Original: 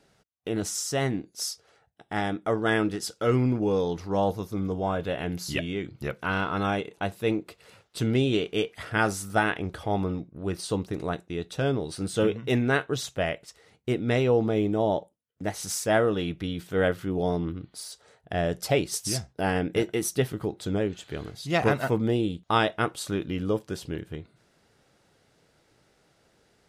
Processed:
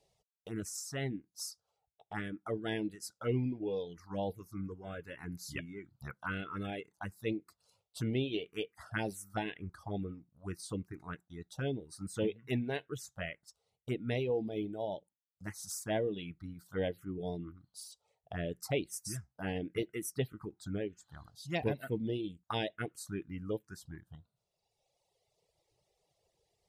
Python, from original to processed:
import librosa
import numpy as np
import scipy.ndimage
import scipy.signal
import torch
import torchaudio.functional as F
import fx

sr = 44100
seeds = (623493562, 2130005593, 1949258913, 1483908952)

y = fx.env_phaser(x, sr, low_hz=250.0, high_hz=1300.0, full_db=-20.5)
y = fx.dereverb_blind(y, sr, rt60_s=1.9)
y = F.gain(torch.from_numpy(y), -7.5).numpy()